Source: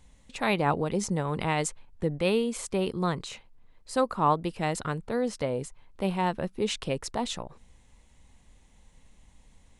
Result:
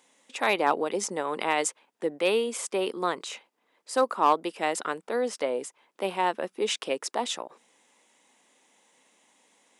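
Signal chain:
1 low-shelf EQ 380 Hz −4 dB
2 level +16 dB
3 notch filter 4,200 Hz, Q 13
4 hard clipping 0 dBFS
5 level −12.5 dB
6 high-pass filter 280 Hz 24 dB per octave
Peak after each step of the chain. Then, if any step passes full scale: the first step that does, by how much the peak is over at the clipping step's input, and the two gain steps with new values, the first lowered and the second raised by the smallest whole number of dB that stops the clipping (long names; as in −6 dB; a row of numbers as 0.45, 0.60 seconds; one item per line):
−12.5, +3.5, +3.5, 0.0, −12.5, −8.5 dBFS
step 2, 3.5 dB
step 2 +12 dB, step 5 −8.5 dB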